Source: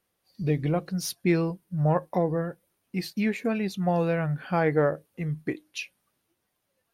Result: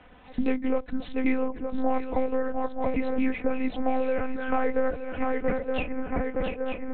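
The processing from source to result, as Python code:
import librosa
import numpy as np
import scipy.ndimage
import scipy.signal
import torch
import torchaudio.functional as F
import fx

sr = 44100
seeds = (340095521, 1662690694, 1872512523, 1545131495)

p1 = fx.echo_banded(x, sr, ms=261, feedback_pct=49, hz=640.0, wet_db=-23)
p2 = fx.vibrato(p1, sr, rate_hz=13.0, depth_cents=74.0)
p3 = p2 + fx.echo_swing(p2, sr, ms=913, ratio=3, feedback_pct=31, wet_db=-9, dry=0)
p4 = fx.rider(p3, sr, range_db=4, speed_s=2.0)
p5 = scipy.signal.sosfilt(scipy.signal.butter(2, 200.0, 'highpass', fs=sr, output='sos'), p4)
p6 = fx.lpc_monotone(p5, sr, seeds[0], pitch_hz=260.0, order=8)
p7 = fx.env_lowpass(p6, sr, base_hz=2400.0, full_db=-16.0)
p8 = p7 + 0.7 * np.pad(p7, (int(4.0 * sr / 1000.0), 0))[:len(p7)]
p9 = fx.band_squash(p8, sr, depth_pct=100)
y = p9 * 10.0 ** (-2.5 / 20.0)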